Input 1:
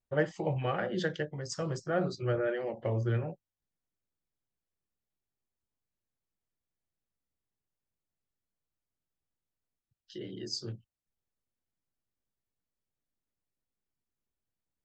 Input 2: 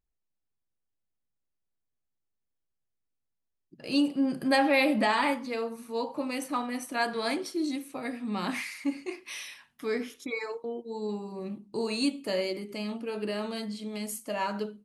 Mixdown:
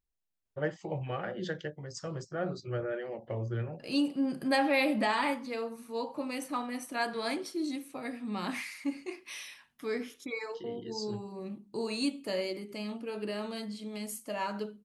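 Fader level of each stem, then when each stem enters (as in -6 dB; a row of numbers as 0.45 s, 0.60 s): -4.0 dB, -3.5 dB; 0.45 s, 0.00 s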